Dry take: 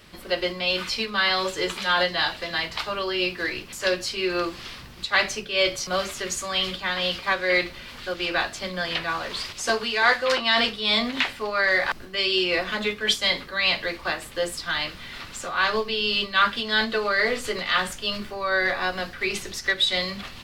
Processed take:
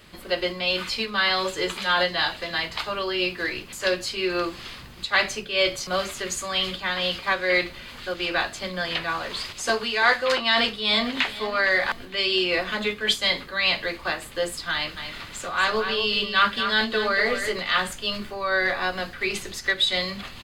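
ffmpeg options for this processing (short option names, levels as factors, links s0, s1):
-filter_complex "[0:a]asplit=2[s0][s1];[s1]afade=t=in:st=10.44:d=0.01,afade=t=out:st=11.22:d=0.01,aecho=0:1:460|920|1380|1840|2300:0.16788|0.0839402|0.0419701|0.0209851|0.0104925[s2];[s0][s2]amix=inputs=2:normalize=0,asplit=3[s3][s4][s5];[s3]afade=t=out:st=14.96:d=0.02[s6];[s4]aecho=1:1:236:0.398,afade=t=in:st=14.96:d=0.02,afade=t=out:st=17.49:d=0.02[s7];[s5]afade=t=in:st=17.49:d=0.02[s8];[s6][s7][s8]amix=inputs=3:normalize=0,bandreject=f=5600:w=9.5"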